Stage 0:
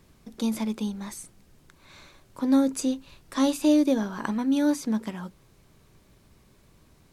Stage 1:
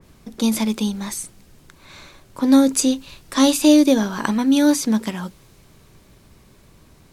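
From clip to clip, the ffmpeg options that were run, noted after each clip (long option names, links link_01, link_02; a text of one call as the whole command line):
ffmpeg -i in.wav -af "adynamicequalizer=threshold=0.00501:dfrequency=2200:dqfactor=0.7:tfrequency=2200:tqfactor=0.7:attack=5:release=100:ratio=0.375:range=3:mode=boostabove:tftype=highshelf,volume=7.5dB" out.wav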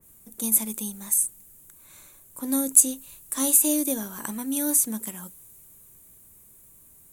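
ffmpeg -i in.wav -af "aexciter=amount=14.4:drive=6.4:freq=7400,volume=-13.5dB" out.wav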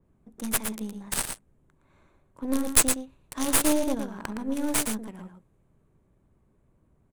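ffmpeg -i in.wav -af "adynamicsmooth=sensitivity=3.5:basefreq=1300,aeval=exprs='0.531*(cos(1*acos(clip(val(0)/0.531,-1,1)))-cos(1*PI/2))+0.188*(cos(4*acos(clip(val(0)/0.531,-1,1)))-cos(4*PI/2))+0.237*(cos(6*acos(clip(val(0)/0.531,-1,1)))-cos(6*PI/2))':channel_layout=same,aecho=1:1:115:0.447,volume=-1dB" out.wav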